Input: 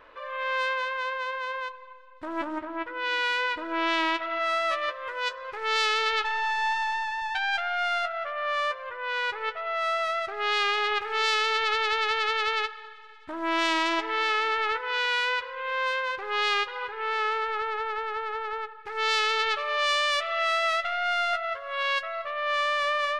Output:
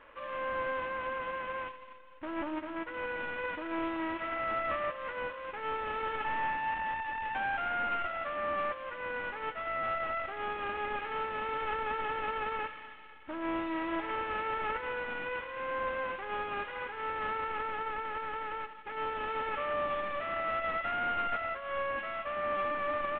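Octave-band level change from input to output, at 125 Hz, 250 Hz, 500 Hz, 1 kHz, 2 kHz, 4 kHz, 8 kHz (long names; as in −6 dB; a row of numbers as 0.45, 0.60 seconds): can't be measured, −2.0 dB, −4.5 dB, −6.0 dB, −9.5 dB, −19.0 dB, below −35 dB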